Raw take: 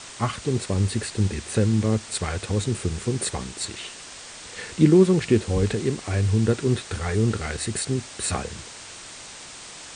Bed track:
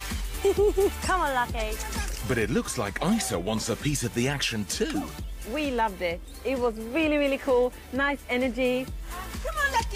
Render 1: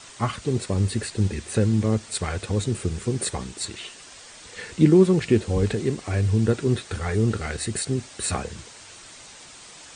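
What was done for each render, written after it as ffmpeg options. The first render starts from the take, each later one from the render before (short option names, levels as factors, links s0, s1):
-af "afftdn=nr=6:nf=-41"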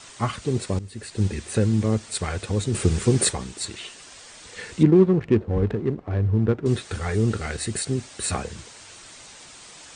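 -filter_complex "[0:a]asplit=3[s0][s1][s2];[s0]afade=t=out:st=2.73:d=0.02[s3];[s1]acontrast=72,afade=t=in:st=2.73:d=0.02,afade=t=out:st=3.31:d=0.02[s4];[s2]afade=t=in:st=3.31:d=0.02[s5];[s3][s4][s5]amix=inputs=3:normalize=0,asettb=1/sr,asplit=3[s6][s7][s8];[s6]atrim=end=4.834[s9];[s7]atrim=start=4.83:end=6.66,asetpts=PTS-STARTPTS,afade=t=in:d=0.004:c=qsin,afade=t=out:st=1.826:d=0.004:c=qsin,adynamicsmooth=sensitivity=1:basefreq=740[s10];[s8]atrim=start=6.656[s11];[s9][s10]acrossfade=d=0.004:c1=hsin:c2=qsin[s12];[s12][s11]acrossfade=d=0.004:c1=qsin:c2=hsin,asplit=2[s13][s14];[s13]atrim=end=0.79,asetpts=PTS-STARTPTS,afade=t=out:st=0.786:d=0.004:c=hsin:silence=0.158489[s15];[s14]atrim=start=0.79,asetpts=PTS-STARTPTS,afade=t=in:d=0.43:c=qua:silence=0.158489[s16];[s15][s16]concat=n=2:v=0:a=1"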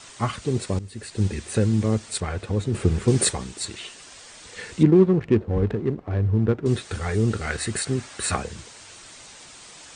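-filter_complex "[0:a]asettb=1/sr,asplit=3[s0][s1][s2];[s0]atrim=end=2.204[s3];[s1]atrim=start=2.2:end=3.08,asetpts=PTS-STARTPTS,afade=t=in:d=0.004:c=qsin,afade=t=out:st=0.876:d=0.004:c=qsin,highshelf=f=3500:g=-11.5[s4];[s2]atrim=start=3.076[s5];[s3][s4]acrossfade=d=0.004:c1=hsin:c2=qsin[s6];[s6][s5]acrossfade=d=0.004:c1=qsin:c2=hsin,asettb=1/sr,asplit=3[s7][s8][s9];[s7]atrim=end=7.474[s10];[s8]atrim=start=7.47:end=8.36,asetpts=PTS-STARTPTS,afade=t=in:d=0.004:c=qsin,afade=t=out:st=0.886:d=0.004:c=qsin,equalizer=f=1400:t=o:w=1.6:g=6.5[s11];[s9]atrim=start=8.356[s12];[s10][s11]acrossfade=d=0.004:c1=hsin:c2=qsin[s13];[s13][s12]acrossfade=d=0.004:c1=qsin:c2=hsin"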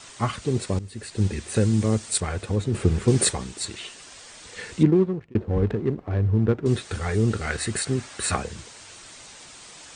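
-filter_complex "[0:a]asettb=1/sr,asplit=3[s0][s1][s2];[s0]atrim=end=1.564[s3];[s1]atrim=start=1.56:end=2.56,asetpts=PTS-STARTPTS,afade=t=in:d=0.004:c=qsin,afade=t=out:st=0.996:d=0.004:c=qsin,highshelf=f=7900:g=11[s4];[s2]atrim=start=2.556[s5];[s3][s4]acrossfade=d=0.004:c1=hsin:c2=qsin[s6];[s6][s5]acrossfade=d=0.004:c1=qsin:c2=hsin,asplit=2[s7][s8];[s7]atrim=end=5.35,asetpts=PTS-STARTPTS,afade=t=out:st=4.77:d=0.58[s9];[s8]atrim=start=5.35,asetpts=PTS-STARTPTS,afade=t=in:d=0.004:c=hsin[s10];[s9][s10]concat=n=2:v=0:a=1"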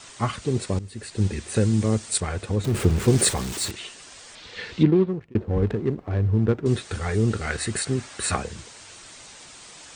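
-filter_complex "[0:a]asettb=1/sr,asplit=3[s0][s1][s2];[s0]atrim=end=2.644[s3];[s1]atrim=start=2.64:end=3.71,asetpts=PTS-STARTPTS,afade=t=in:d=0.004:c=qsin,afade=t=out:st=1.066:d=0.004:c=qsin,aeval=exprs='val(0)+0.5*0.0355*sgn(val(0))':c=same[s4];[s2]atrim=start=3.706[s5];[s3][s4]acrossfade=d=0.004:c1=hsin:c2=qsin[s6];[s6][s5]acrossfade=d=0.004:c1=qsin:c2=hsin,asettb=1/sr,asplit=3[s7][s8][s9];[s7]atrim=end=4.354[s10];[s8]atrim=start=4.35:end=5.08,asetpts=PTS-STARTPTS,afade=t=in:d=0.004:c=qsin,afade=t=out:st=0.726:d=0.004:c=qsin,lowpass=f=3900:t=q:w=1.7[s11];[s9]atrim=start=5.076[s12];[s10][s11]acrossfade=d=0.004:c1=hsin:c2=qsin[s13];[s13][s12]acrossfade=d=0.004:c1=qsin:c2=hsin,asettb=1/sr,asplit=3[s14][s15][s16];[s14]atrim=end=5.624[s17];[s15]atrim=start=5.62:end=6.62,asetpts=PTS-STARTPTS,afade=t=in:d=0.004:c=qsin,afade=t=out:st=0.996:d=0.004:c=qsin,highshelf=f=4900:g=4.5[s18];[s16]atrim=start=6.616[s19];[s17][s18]acrossfade=d=0.004:c1=hsin:c2=qsin[s20];[s20][s19]acrossfade=d=0.004:c1=qsin:c2=hsin"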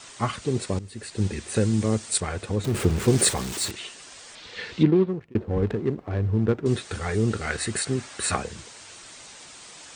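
-af "lowshelf=f=110:g=-5.5"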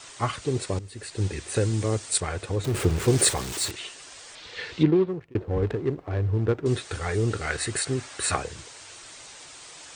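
-af "equalizer=f=210:t=o:w=0.3:g=-13"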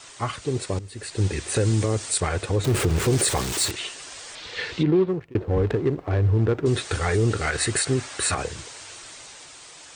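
-af "dynaudnorm=f=250:g=9:m=2.24,alimiter=limit=0.237:level=0:latency=1:release=60"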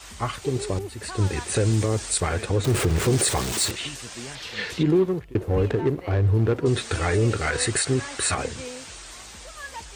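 -filter_complex "[1:a]volume=0.224[s0];[0:a][s0]amix=inputs=2:normalize=0"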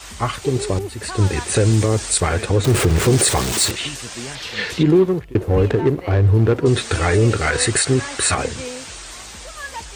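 -af "volume=2"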